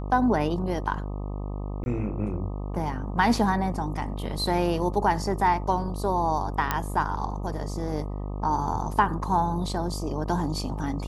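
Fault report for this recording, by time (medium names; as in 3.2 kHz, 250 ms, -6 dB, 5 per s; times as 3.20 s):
buzz 50 Hz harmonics 25 -32 dBFS
1.84–1.86 s: dropout 21 ms
6.71 s: pop -9 dBFS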